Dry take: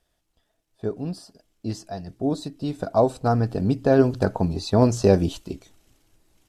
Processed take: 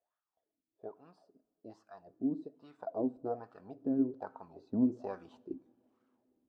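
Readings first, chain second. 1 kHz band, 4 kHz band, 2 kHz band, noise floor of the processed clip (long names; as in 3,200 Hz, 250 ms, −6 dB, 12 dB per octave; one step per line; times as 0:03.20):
−18.5 dB, below −30 dB, below −20 dB, below −85 dBFS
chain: LFO wah 1.2 Hz 240–1,300 Hz, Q 5.4
coupled-rooms reverb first 0.5 s, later 3.1 s, from −18 dB, DRR 18.5 dB
speech leveller within 4 dB 2 s
level −5 dB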